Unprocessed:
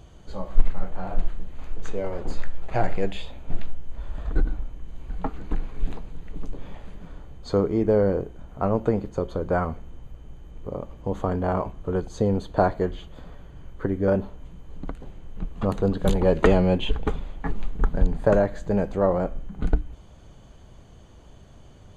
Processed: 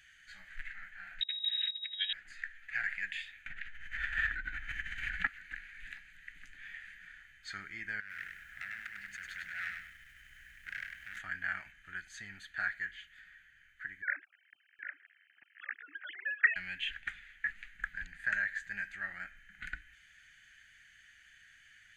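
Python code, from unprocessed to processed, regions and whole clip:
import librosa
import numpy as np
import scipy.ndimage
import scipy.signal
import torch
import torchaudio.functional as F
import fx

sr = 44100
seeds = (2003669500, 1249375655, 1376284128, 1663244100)

y = fx.chain(x, sr, fx.over_compress(threshold_db=-27.0, ratio=-0.5),
    fx.freq_invert(carrier_hz=3800), at=(1.21, 2.13))
y = fx.chain(y, sr, fx.lowpass(hz=2600.0, slope=6),
    fx.env_flatten(amount_pct=100), at=(3.46, 5.27))
y = fx.chain(y, sr, fx.over_compress(threshold_db=-29.0, ratio=-1.0),
    fx.clip_hard(threshold_db=-32.0),
    fx.echo_crushed(ms=100, feedback_pct=35, bits=10, wet_db=-4.5), at=(8.0, 11.19))
y = fx.chain(y, sr, fx.sine_speech(),
    fx.echo_single(ms=770, db=-10.5), at=(14.02, 16.56))
y = scipy.signal.sosfilt(scipy.signal.ellip(4, 1.0, 40, 1700.0, 'highpass', fs=sr, output='sos'), y)
y = fx.high_shelf_res(y, sr, hz=2600.0, db=-13.0, q=1.5)
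y = fx.rider(y, sr, range_db=5, speed_s=2.0)
y = y * 10.0 ** (5.5 / 20.0)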